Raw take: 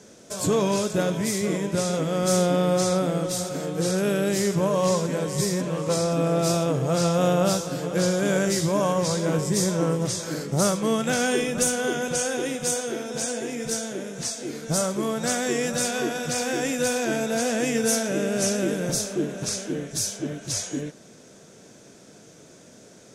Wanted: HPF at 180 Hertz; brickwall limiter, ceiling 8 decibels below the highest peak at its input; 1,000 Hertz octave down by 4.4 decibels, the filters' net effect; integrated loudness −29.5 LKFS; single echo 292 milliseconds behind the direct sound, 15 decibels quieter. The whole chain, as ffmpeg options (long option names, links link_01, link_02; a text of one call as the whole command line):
ffmpeg -i in.wav -af "highpass=180,equalizer=frequency=1000:width_type=o:gain=-6.5,alimiter=limit=-19dB:level=0:latency=1,aecho=1:1:292:0.178,volume=-1dB" out.wav